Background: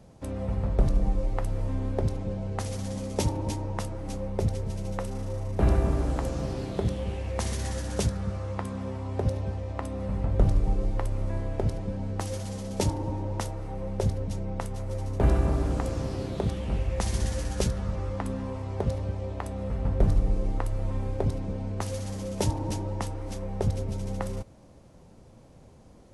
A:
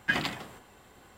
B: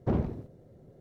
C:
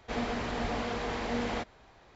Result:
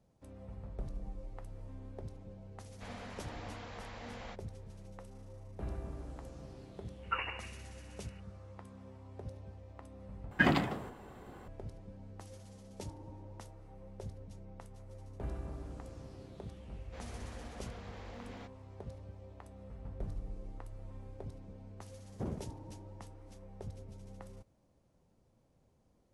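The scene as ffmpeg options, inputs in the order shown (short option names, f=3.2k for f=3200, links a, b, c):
-filter_complex "[3:a]asplit=2[a][b];[1:a]asplit=2[c][d];[0:a]volume=-18.5dB[e];[a]equalizer=f=330:t=o:w=0.89:g=-10[f];[c]lowpass=f=2.6k:t=q:w=0.5098,lowpass=f=2.6k:t=q:w=0.6013,lowpass=f=2.6k:t=q:w=0.9,lowpass=f=2.6k:t=q:w=2.563,afreqshift=-3000[g];[d]tiltshelf=f=1.5k:g=8[h];[b]volume=29dB,asoftclip=hard,volume=-29dB[i];[e]asplit=2[j][k];[j]atrim=end=10.314[l];[h]atrim=end=1.17,asetpts=PTS-STARTPTS,volume=-0.5dB[m];[k]atrim=start=11.476[n];[f]atrim=end=2.15,asetpts=PTS-STARTPTS,volume=-12.5dB,afade=t=in:d=0.004:c=hsin,afade=t=out:st=2.146:d=0.004:c=hsin,adelay=2720[o];[g]atrim=end=1.17,asetpts=PTS-STARTPTS,volume=-7.5dB,afade=t=in:d=0.004:c=hsin,afade=t=out:st=1.166:d=0.004:c=hsin,adelay=7030[p];[i]atrim=end=2.15,asetpts=PTS-STARTPTS,volume=-16.5dB,afade=t=in:d=0.004:c=hsin,afade=t=out:st=2.146:d=0.004:c=hsin,adelay=742644S[q];[2:a]atrim=end=1,asetpts=PTS-STARTPTS,volume=-11.5dB,afade=t=in:d=0.004:c=hsin,afade=t=out:st=0.996:d=0.004:c=hsin,adelay=22130[r];[l][m]acrossfade=d=0.004:c1=hsin:c2=hsin[s];[s][n]acrossfade=d=0.004:c1=hsin:c2=hsin[t];[t][o][p][q][r]amix=inputs=5:normalize=0"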